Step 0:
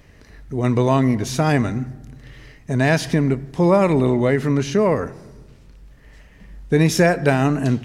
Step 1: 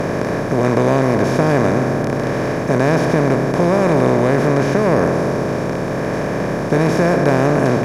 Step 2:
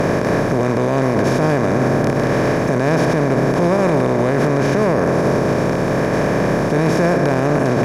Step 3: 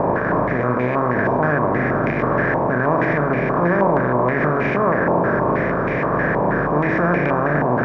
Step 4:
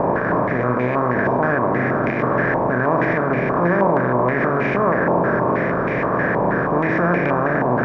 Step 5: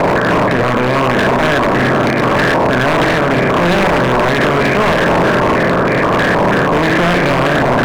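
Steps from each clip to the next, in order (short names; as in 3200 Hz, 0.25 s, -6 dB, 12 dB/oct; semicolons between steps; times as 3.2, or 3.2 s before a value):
per-bin compression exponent 0.2; high shelf 2300 Hz -10.5 dB; gain -4 dB
limiter -10.5 dBFS, peak gain reduction 8.5 dB; gain +3.5 dB
flutter echo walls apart 6.9 m, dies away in 0.37 s; stepped low-pass 6.3 Hz 940–2200 Hz; gain -5.5 dB
notches 50/100/150 Hz
wavefolder -15 dBFS; gain +8.5 dB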